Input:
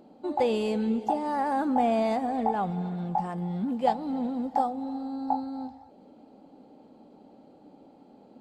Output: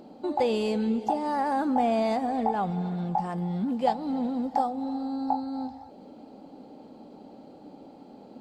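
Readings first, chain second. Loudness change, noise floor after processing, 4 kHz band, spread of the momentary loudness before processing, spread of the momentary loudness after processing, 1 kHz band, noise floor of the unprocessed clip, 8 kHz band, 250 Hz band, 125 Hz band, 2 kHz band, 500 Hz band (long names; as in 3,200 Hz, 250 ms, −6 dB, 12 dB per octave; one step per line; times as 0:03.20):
+0.5 dB, −49 dBFS, +2.0 dB, 9 LU, 22 LU, +0.5 dB, −55 dBFS, can't be measured, +1.0 dB, +1.5 dB, +0.5 dB, +0.5 dB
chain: parametric band 4,900 Hz +4 dB 0.68 octaves
in parallel at +3 dB: downward compressor, threshold −38 dBFS, peak gain reduction 18 dB
on the sum: level −2 dB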